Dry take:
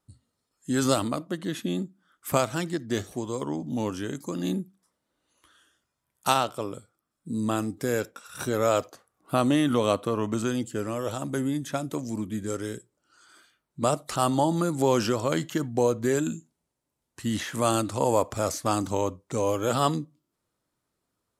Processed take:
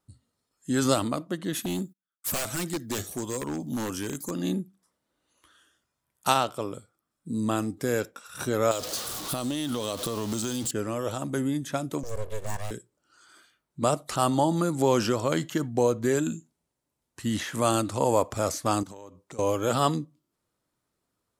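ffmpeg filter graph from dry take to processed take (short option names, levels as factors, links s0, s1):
-filter_complex "[0:a]asettb=1/sr,asplit=3[s0][s1][s2];[s0]atrim=end=1.534[s3];[s1]atrim=start=1.53:end=4.31,asetpts=PTS-STARTPTS,afade=t=in:d=0.004:c=qsin,afade=t=out:st=2.776:d=0.004:c=qsin,aemphasis=mode=production:type=50fm,agate=range=0.0282:threshold=0.00251:ratio=16:release=100:detection=peak,aeval=exprs='0.0668*(abs(mod(val(0)/0.0668+3,4)-2)-1)':c=same[s4];[s2]atrim=start=4.306[s5];[s3][s4]acrossfade=d=0.004:c1=hsin:c2=qsin[s6];[s6][s5]acrossfade=d=0.004:c1=qsin:c2=hsin,asettb=1/sr,asplit=3[s7][s8][s9];[s7]atrim=end=8.714[s10];[s8]atrim=start=8.71:end=10.71,asetpts=PTS-STARTPTS,afade=t=in:d=0.004:c=qsin,afade=t=out:st=1.996:d=0.004:c=qsin,aeval=exprs='val(0)+0.5*0.0224*sgn(val(0))':c=same,highshelf=f=2900:t=q:w=1.5:g=8.5,acompressor=threshold=0.0501:ratio=6:attack=3.2:release=140:knee=1:detection=peak[s11];[s9]atrim=start=10.706[s12];[s10][s11]acrossfade=d=0.004:c1=hsin:c2=qsin[s13];[s13][s12]acrossfade=d=0.004:c1=qsin:c2=hsin,asettb=1/sr,asplit=3[s14][s15][s16];[s14]atrim=end=12.034[s17];[s15]atrim=start=12.03:end=12.71,asetpts=PTS-STARTPTS,afade=t=in:d=0.004:c=qsin,afade=t=out:st=0.676:d=0.004:c=qsin,highpass=f=150:w=0.5412,highpass=f=150:w=1.3066,aeval=exprs='abs(val(0))':c=same,aecho=1:1:1.8:0.36,atrim=end_sample=29988[s18];[s16]atrim=start=12.706[s19];[s17][s18]acrossfade=d=0.004:c1=hsin:c2=qsin[s20];[s20][s19]acrossfade=d=0.004:c1=qsin:c2=hsin,asettb=1/sr,asplit=3[s21][s22][s23];[s21]atrim=end=18.834[s24];[s22]atrim=start=18.83:end=19.39,asetpts=PTS-STARTPTS,afade=t=in:d=0.004:c=qsin,afade=t=out:st=0.556:d=0.004:c=qsin,highpass=f=130:p=1,acompressor=threshold=0.01:ratio=10:attack=3.2:release=140:knee=1:detection=peak[s25];[s23]atrim=start=19.386[s26];[s24][s25]acrossfade=d=0.004:c1=hsin:c2=qsin[s27];[s27][s26]acrossfade=d=0.004:c1=qsin:c2=hsin"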